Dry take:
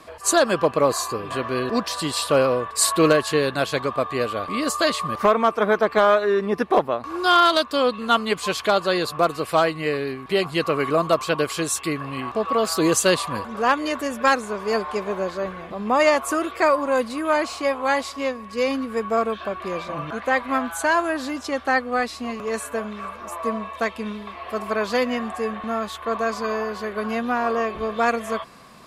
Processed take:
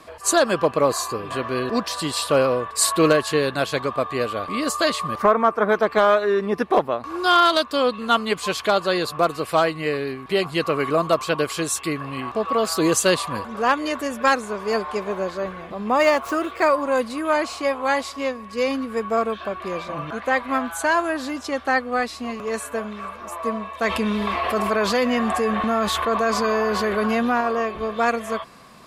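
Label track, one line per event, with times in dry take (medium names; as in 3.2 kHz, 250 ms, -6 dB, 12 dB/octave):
5.220000	5.690000	resonant high shelf 2.2 kHz -6.5 dB, Q 1.5
15.900000	16.670000	median filter over 5 samples
23.840000	27.410000	level flattener amount 70%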